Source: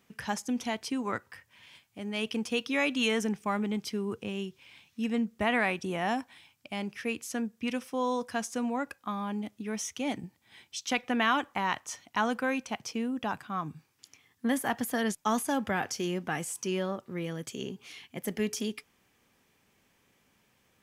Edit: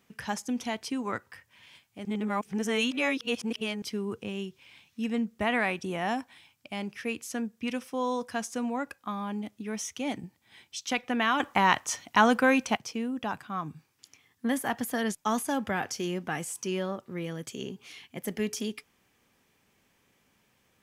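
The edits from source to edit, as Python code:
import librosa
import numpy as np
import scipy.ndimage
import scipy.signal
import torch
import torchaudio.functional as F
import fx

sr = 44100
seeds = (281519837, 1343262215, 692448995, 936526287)

y = fx.edit(x, sr, fx.reverse_span(start_s=2.05, length_s=1.77),
    fx.clip_gain(start_s=11.4, length_s=1.37, db=7.5), tone=tone)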